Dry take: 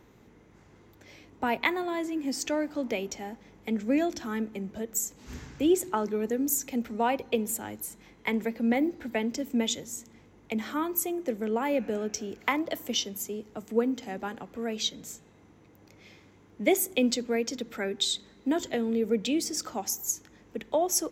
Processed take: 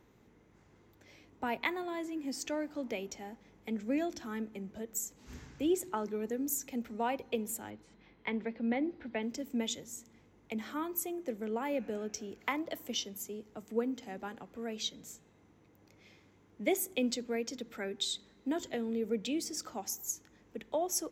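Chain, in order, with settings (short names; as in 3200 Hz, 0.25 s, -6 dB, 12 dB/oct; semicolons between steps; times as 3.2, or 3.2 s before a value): 7.7–9.23 LPF 4300 Hz 24 dB/oct; gain -7 dB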